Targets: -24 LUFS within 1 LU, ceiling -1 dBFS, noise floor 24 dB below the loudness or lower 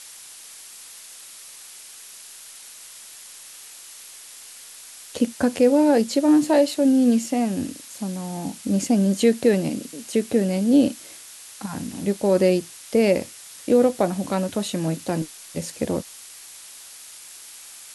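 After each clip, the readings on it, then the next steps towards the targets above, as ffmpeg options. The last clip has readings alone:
noise floor -43 dBFS; noise floor target -46 dBFS; loudness -21.5 LUFS; peak -6.5 dBFS; loudness target -24.0 LUFS
-> -af "afftdn=nr=6:nf=-43"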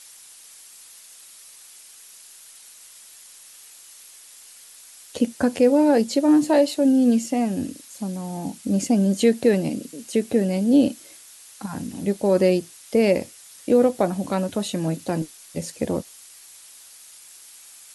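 noise floor -47 dBFS; loudness -21.5 LUFS; peak -6.5 dBFS; loudness target -24.0 LUFS
-> -af "volume=-2.5dB"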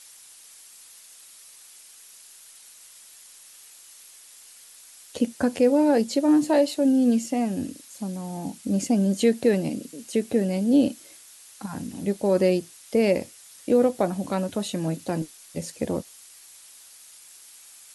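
loudness -24.0 LUFS; peak -9.0 dBFS; noise floor -49 dBFS

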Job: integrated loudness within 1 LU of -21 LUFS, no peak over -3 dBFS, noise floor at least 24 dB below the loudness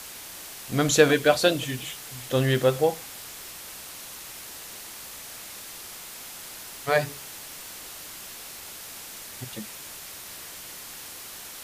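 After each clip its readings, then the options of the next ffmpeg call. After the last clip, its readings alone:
noise floor -41 dBFS; noise floor target -53 dBFS; loudness -29.0 LUFS; peak -3.5 dBFS; loudness target -21.0 LUFS
-> -af "afftdn=nr=12:nf=-41"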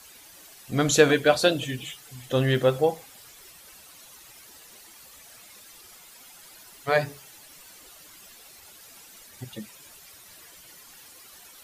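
noise floor -50 dBFS; loudness -23.5 LUFS; peak -3.5 dBFS; loudness target -21.0 LUFS
-> -af "volume=2.5dB,alimiter=limit=-3dB:level=0:latency=1"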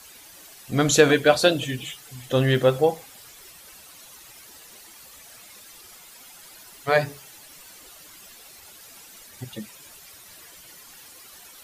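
loudness -21.5 LUFS; peak -3.0 dBFS; noise floor -47 dBFS

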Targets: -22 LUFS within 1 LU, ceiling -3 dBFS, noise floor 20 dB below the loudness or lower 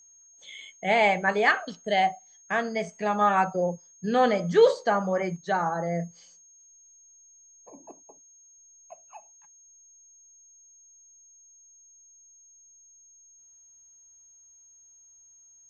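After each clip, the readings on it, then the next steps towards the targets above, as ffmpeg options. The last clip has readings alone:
steady tone 6500 Hz; tone level -53 dBFS; loudness -25.0 LUFS; peak -7.5 dBFS; loudness target -22.0 LUFS
-> -af "bandreject=f=6.5k:w=30"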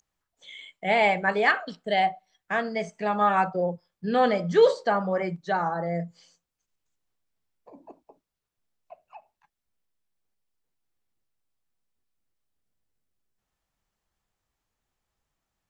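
steady tone none; loudness -25.0 LUFS; peak -7.5 dBFS; loudness target -22.0 LUFS
-> -af "volume=3dB"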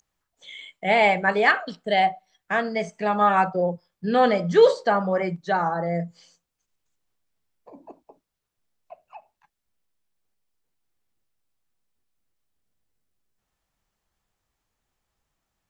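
loudness -22.0 LUFS; peak -4.5 dBFS; noise floor -82 dBFS

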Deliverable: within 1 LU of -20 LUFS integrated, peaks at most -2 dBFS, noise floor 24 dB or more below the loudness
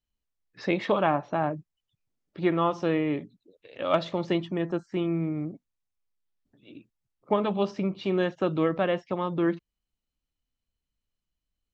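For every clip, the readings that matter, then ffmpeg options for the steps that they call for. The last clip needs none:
loudness -28.0 LUFS; peak -9.0 dBFS; loudness target -20.0 LUFS
-> -af "volume=8dB,alimiter=limit=-2dB:level=0:latency=1"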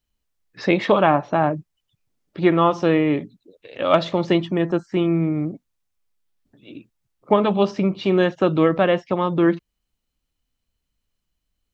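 loudness -20.0 LUFS; peak -2.0 dBFS; noise floor -78 dBFS

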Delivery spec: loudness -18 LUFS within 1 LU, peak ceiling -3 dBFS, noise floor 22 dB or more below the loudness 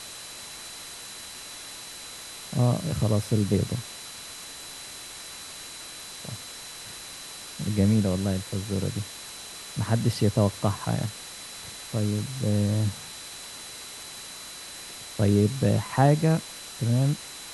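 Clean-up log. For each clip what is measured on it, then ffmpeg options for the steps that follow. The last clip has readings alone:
steady tone 4000 Hz; tone level -45 dBFS; noise floor -41 dBFS; noise floor target -51 dBFS; loudness -28.5 LUFS; peak -6.5 dBFS; loudness target -18.0 LUFS
-> -af "bandreject=f=4k:w=30"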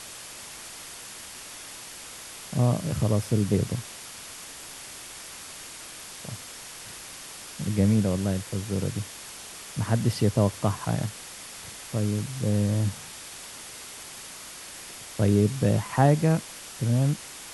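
steady tone none; noise floor -42 dBFS; noise floor target -49 dBFS
-> -af "afftdn=nr=7:nf=-42"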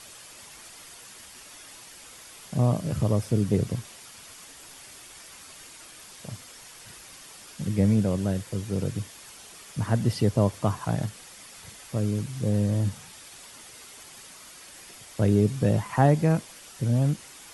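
noise floor -47 dBFS; noise floor target -48 dBFS
-> -af "afftdn=nr=6:nf=-47"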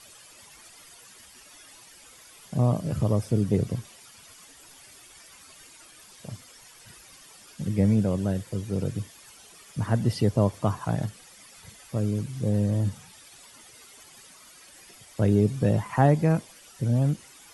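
noise floor -51 dBFS; loudness -26.0 LUFS; peak -6.5 dBFS; loudness target -18.0 LUFS
-> -af "volume=8dB,alimiter=limit=-3dB:level=0:latency=1"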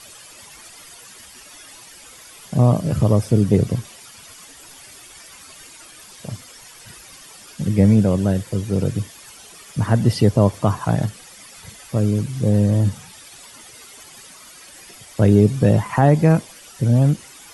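loudness -18.5 LUFS; peak -3.0 dBFS; noise floor -43 dBFS

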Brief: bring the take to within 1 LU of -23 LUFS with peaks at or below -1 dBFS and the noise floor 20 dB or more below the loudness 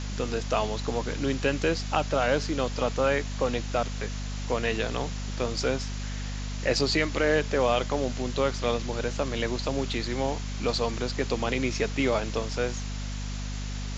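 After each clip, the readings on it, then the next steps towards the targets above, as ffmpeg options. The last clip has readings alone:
hum 50 Hz; harmonics up to 250 Hz; hum level -31 dBFS; noise floor -33 dBFS; noise floor target -49 dBFS; loudness -28.5 LUFS; peak -8.5 dBFS; loudness target -23.0 LUFS
-> -af "bandreject=f=50:t=h:w=4,bandreject=f=100:t=h:w=4,bandreject=f=150:t=h:w=4,bandreject=f=200:t=h:w=4,bandreject=f=250:t=h:w=4"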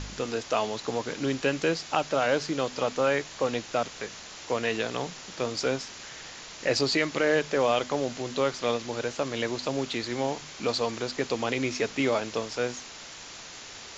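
hum none; noise floor -44 dBFS; noise floor target -49 dBFS
-> -af "afftdn=nr=6:nf=-44"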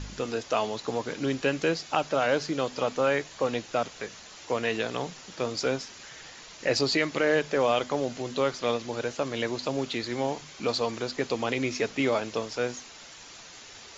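noise floor -47 dBFS; noise floor target -49 dBFS
-> -af "afftdn=nr=6:nf=-47"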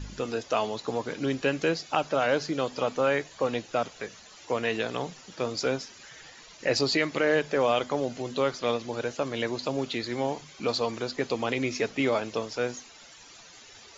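noise floor -51 dBFS; loudness -29.0 LUFS; peak -8.5 dBFS; loudness target -23.0 LUFS
-> -af "volume=6dB"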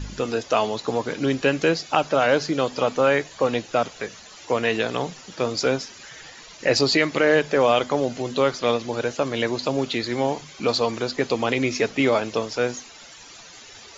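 loudness -23.0 LUFS; peak -2.5 dBFS; noise floor -45 dBFS

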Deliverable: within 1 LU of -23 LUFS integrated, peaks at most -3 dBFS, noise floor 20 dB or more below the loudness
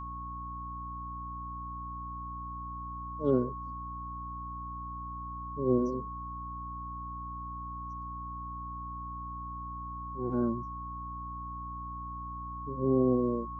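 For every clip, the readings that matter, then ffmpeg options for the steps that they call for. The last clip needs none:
hum 60 Hz; harmonics up to 300 Hz; hum level -41 dBFS; steady tone 1100 Hz; tone level -39 dBFS; loudness -36.0 LUFS; peak -14.5 dBFS; loudness target -23.0 LUFS
-> -af "bandreject=f=60:t=h:w=6,bandreject=f=120:t=h:w=6,bandreject=f=180:t=h:w=6,bandreject=f=240:t=h:w=6,bandreject=f=300:t=h:w=6"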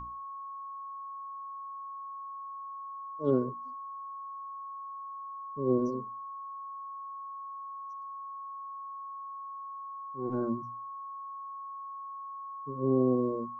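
hum none; steady tone 1100 Hz; tone level -39 dBFS
-> -af "bandreject=f=1.1k:w=30"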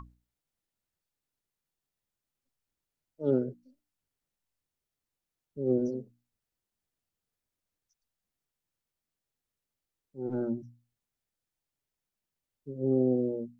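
steady tone none; loudness -31.0 LUFS; peak -15.5 dBFS; loudness target -23.0 LUFS
-> -af "volume=8dB"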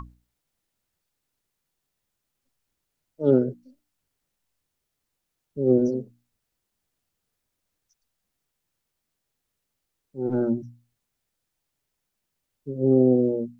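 loudness -23.0 LUFS; peak -7.5 dBFS; noise floor -81 dBFS

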